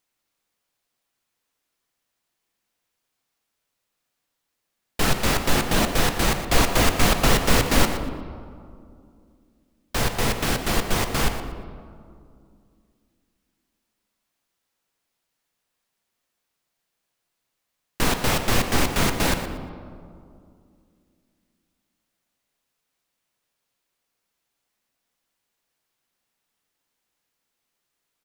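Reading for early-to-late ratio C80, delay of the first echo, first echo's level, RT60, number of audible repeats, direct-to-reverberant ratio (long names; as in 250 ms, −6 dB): 8.0 dB, 118 ms, −12.5 dB, 2.4 s, 1, 5.5 dB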